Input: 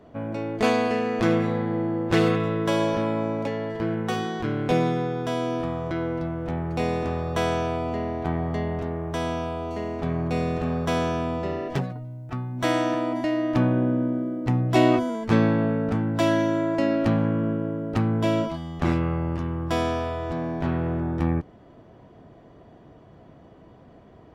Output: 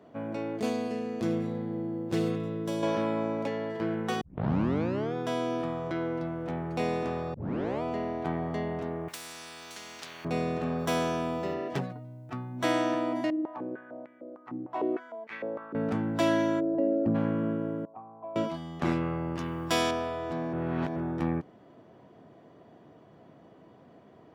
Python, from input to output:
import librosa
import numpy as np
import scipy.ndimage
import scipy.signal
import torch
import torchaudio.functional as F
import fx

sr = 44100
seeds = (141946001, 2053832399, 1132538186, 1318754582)

y = fx.peak_eq(x, sr, hz=1500.0, db=-13.0, octaves=3.0, at=(0.6, 2.83))
y = fx.spectral_comp(y, sr, ratio=10.0, at=(9.08, 10.25))
y = fx.high_shelf(y, sr, hz=8300.0, db=12.0, at=(10.79, 11.54))
y = fx.filter_held_bandpass(y, sr, hz=6.6, low_hz=310.0, high_hz=2100.0, at=(13.3, 15.75))
y = fx.envelope_sharpen(y, sr, power=2.0, at=(16.59, 17.14), fade=0.02)
y = fx.formant_cascade(y, sr, vowel='a', at=(17.85, 18.36))
y = fx.high_shelf(y, sr, hz=2100.0, db=11.5, at=(19.37, 19.91))
y = fx.edit(y, sr, fx.tape_start(start_s=4.21, length_s=0.93),
    fx.tape_start(start_s=7.34, length_s=0.48),
    fx.reverse_span(start_s=20.53, length_s=0.43), tone=tone)
y = scipy.signal.sosfilt(scipy.signal.butter(2, 150.0, 'highpass', fs=sr, output='sos'), y)
y = y * librosa.db_to_amplitude(-3.5)